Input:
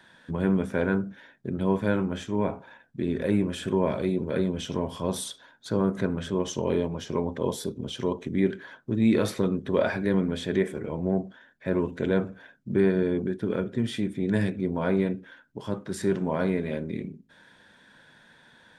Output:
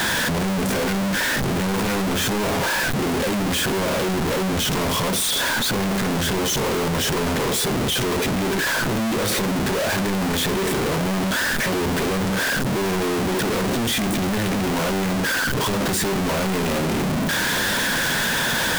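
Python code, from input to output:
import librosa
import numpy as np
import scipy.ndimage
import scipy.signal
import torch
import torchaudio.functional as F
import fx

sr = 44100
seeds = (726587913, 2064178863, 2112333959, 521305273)

y = np.sign(x) * np.sqrt(np.mean(np.square(x)))
y = F.gain(torch.from_numpy(y), 6.0).numpy()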